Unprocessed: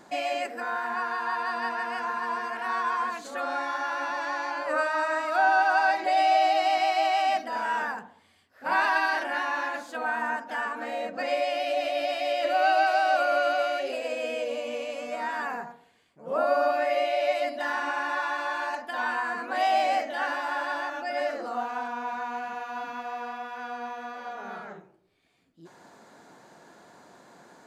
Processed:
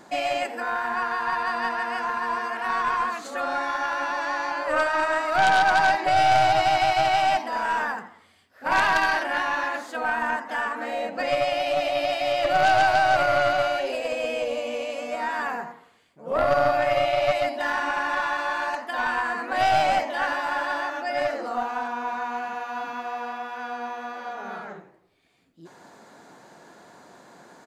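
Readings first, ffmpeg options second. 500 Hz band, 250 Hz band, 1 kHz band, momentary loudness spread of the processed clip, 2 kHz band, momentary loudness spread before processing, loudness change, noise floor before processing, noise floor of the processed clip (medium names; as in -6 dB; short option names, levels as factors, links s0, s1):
+3.0 dB, +3.5 dB, +3.0 dB, 12 LU, +3.5 dB, 13 LU, +3.5 dB, -60 dBFS, -55 dBFS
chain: -filter_complex "[0:a]asplit=5[s0][s1][s2][s3][s4];[s1]adelay=85,afreqshift=110,volume=0.126[s5];[s2]adelay=170,afreqshift=220,volume=0.0582[s6];[s3]adelay=255,afreqshift=330,volume=0.0266[s7];[s4]adelay=340,afreqshift=440,volume=0.0123[s8];[s0][s5][s6][s7][s8]amix=inputs=5:normalize=0,aeval=exprs='0.282*(cos(1*acos(clip(val(0)/0.282,-1,1)))-cos(1*PI/2))+0.0562*(cos(5*acos(clip(val(0)/0.282,-1,1)))-cos(5*PI/2))+0.0708*(cos(6*acos(clip(val(0)/0.282,-1,1)))-cos(6*PI/2))+0.0224*(cos(7*acos(clip(val(0)/0.282,-1,1)))-cos(7*PI/2))+0.0398*(cos(8*acos(clip(val(0)/0.282,-1,1)))-cos(8*PI/2))':c=same"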